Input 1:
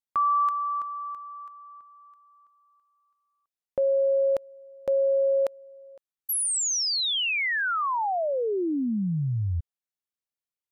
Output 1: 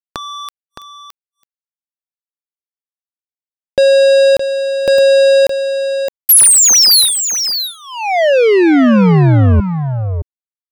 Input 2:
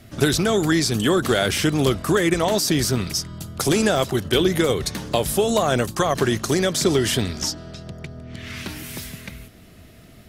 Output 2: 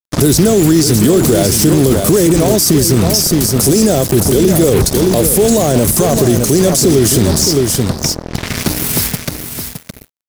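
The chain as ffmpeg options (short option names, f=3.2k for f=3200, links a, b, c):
-filter_complex "[0:a]highshelf=f=2.9k:g=-9,acrossover=split=630|5000[a][b][c];[b]acompressor=threshold=-36dB:ratio=10:attack=1.9:release=964:knee=1:detection=rms[d];[a][d][c]amix=inputs=3:normalize=0,aexciter=amount=4:drive=2.7:freq=4.3k,acrusher=bits=4:mix=0:aa=0.5,asplit=2[e][f];[f]aecho=0:1:616:0.376[g];[e][g]amix=inputs=2:normalize=0,alimiter=level_in=18dB:limit=-1dB:release=50:level=0:latency=1,volume=-1dB"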